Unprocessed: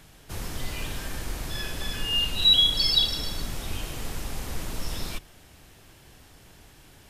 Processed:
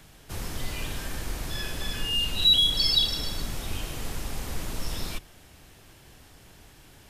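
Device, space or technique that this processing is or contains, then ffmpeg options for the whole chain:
one-band saturation: -filter_complex "[0:a]acrossover=split=460|3100[s0][s1][s2];[s1]asoftclip=type=tanh:threshold=0.0355[s3];[s0][s3][s2]amix=inputs=3:normalize=0"

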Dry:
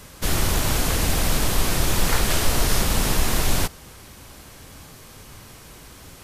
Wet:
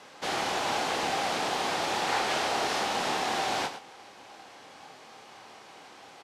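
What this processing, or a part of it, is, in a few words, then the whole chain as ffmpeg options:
intercom: -filter_complex "[0:a]highpass=360,lowpass=4600,equalizer=f=790:t=o:w=0.32:g=10,asoftclip=type=tanh:threshold=0.211,asplit=2[s0][s1];[s1]adelay=27,volume=0.398[s2];[s0][s2]amix=inputs=2:normalize=0,aecho=1:1:106:0.282,volume=0.668"

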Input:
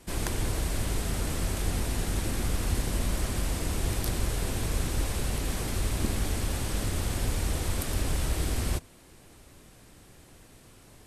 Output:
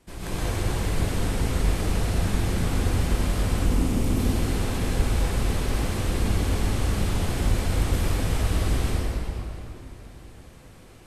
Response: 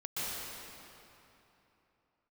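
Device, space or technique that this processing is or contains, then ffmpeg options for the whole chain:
swimming-pool hall: -filter_complex "[0:a]asettb=1/sr,asplit=3[s0][s1][s2];[s0]atrim=end=3.454[s3];[s1]atrim=start=3.45:end=4.07,asetpts=PTS-STARTPTS,afade=t=in:d=0.004:c=qsin,afade=t=out:st=0.616:d=0.004:c=qsin,equalizer=f=250:t=o:w=0.67:g=11,equalizer=f=630:t=o:w=0.67:g=-3,equalizer=f=1600:t=o:w=0.67:g=-9,equalizer=f=4000:t=o:w=0.67:g=-5[s4];[s2]atrim=start=4.066[s5];[s3][s4]acrossfade=d=0.004:c1=hsin:c2=qsin[s6];[s6][s5]acrossfade=d=0.004:c1=qsin:c2=hsin[s7];[1:a]atrim=start_sample=2205[s8];[s7][s8]afir=irnorm=-1:irlink=0,highshelf=f=5400:g=-6"

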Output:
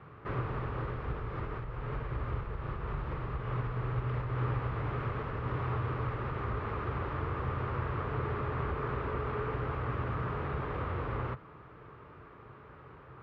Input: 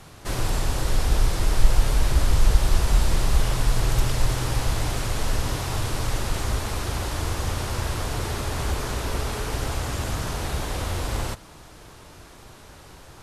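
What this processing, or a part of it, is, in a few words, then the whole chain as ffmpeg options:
bass amplifier: -filter_complex "[0:a]asettb=1/sr,asplit=3[s0][s1][s2];[s0]atrim=end=1.644[s3];[s1]atrim=start=1.64:end=3.26,asetpts=PTS-STARTPTS,afade=t=in:d=0.004:c=qsin,afade=t=out:st=1.616:d=0.004:c=qsin,asplit=2[s4][s5];[s5]adelay=43,volume=0.596[s6];[s4][s6]amix=inputs=2:normalize=0,atrim=end_sample=71442[s7];[s2]atrim=start=3.256[s8];[s3][s7]acrossfade=d=0.004:c1=hsin:c2=qsin[s9];[s9][s8]acrossfade=d=0.004:c1=qsin:c2=hsin,acompressor=threshold=0.0891:ratio=4,highpass=63,equalizer=f=130:t=q:w=4:g=8,equalizer=f=430:t=q:w=4:g=7,equalizer=f=710:t=q:w=4:g=-4,equalizer=f=1200:t=q:w=4:g=9,lowpass=f=2300:w=0.5412,lowpass=f=2300:w=1.3066,volume=0.447"

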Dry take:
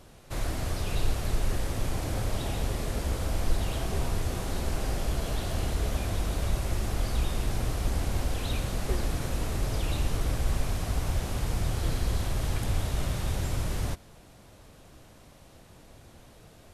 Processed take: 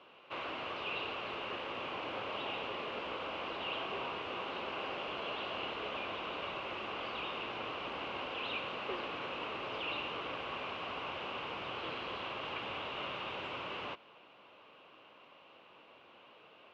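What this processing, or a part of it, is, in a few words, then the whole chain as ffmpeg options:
phone earpiece: -af "highpass=490,equalizer=f=700:t=q:w=4:g=-5,equalizer=f=1100:t=q:w=4:g=5,equalizer=f=1800:t=q:w=4:g=-7,equalizer=f=2800:t=q:w=4:g=10,lowpass=f=3000:w=0.5412,lowpass=f=3000:w=1.3066"

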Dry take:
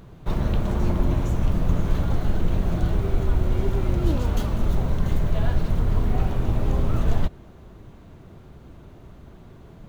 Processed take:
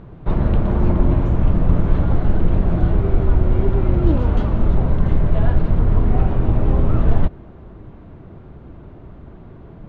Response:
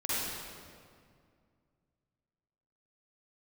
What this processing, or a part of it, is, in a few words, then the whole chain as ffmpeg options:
phone in a pocket: -af "lowpass=3200,equalizer=f=310:t=o:w=0.2:g=2.5,highshelf=f=2500:g=-10,volume=2"

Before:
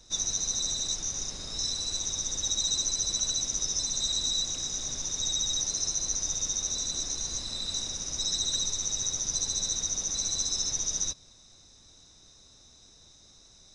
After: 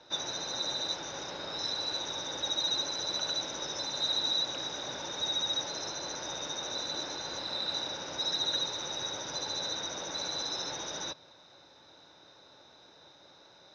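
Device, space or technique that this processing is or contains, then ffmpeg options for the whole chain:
kitchen radio: -af "highpass=190,equalizer=f=220:t=q:w=4:g=-7,equalizer=f=330:t=q:w=4:g=3,equalizer=f=560:t=q:w=4:g=8,equalizer=f=880:t=q:w=4:g=9,equalizer=f=1500:t=q:w=4:g=8,lowpass=f=3800:w=0.5412,lowpass=f=3800:w=1.3066,volume=1.5"

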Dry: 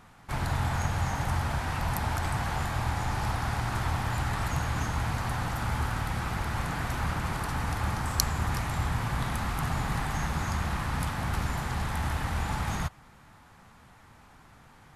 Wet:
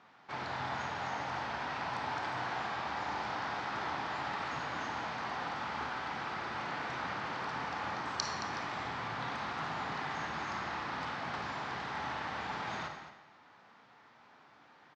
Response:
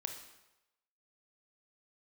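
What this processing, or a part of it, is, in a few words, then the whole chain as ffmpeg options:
supermarket ceiling speaker: -filter_complex "[0:a]highpass=290,lowpass=6800,lowpass=f=5500:w=0.5412,lowpass=f=5500:w=1.3066,aecho=1:1:55.39|221.6:0.251|0.251[s0];[1:a]atrim=start_sample=2205[s1];[s0][s1]afir=irnorm=-1:irlink=0,volume=0.75"

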